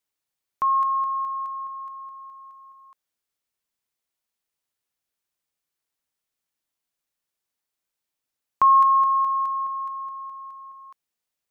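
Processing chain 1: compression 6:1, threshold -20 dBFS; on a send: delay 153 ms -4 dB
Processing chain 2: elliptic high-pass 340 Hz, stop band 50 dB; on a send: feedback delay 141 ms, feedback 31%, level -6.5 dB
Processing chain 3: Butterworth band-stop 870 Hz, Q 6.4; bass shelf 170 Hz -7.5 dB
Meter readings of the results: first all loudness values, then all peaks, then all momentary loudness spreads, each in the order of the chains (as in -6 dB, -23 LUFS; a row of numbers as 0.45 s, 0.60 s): -24.0 LUFS, -22.0 LUFS, -22.0 LUFS; -11.0 dBFS, -10.5 dBFS, -10.5 dBFS; 20 LU, 23 LU, 22 LU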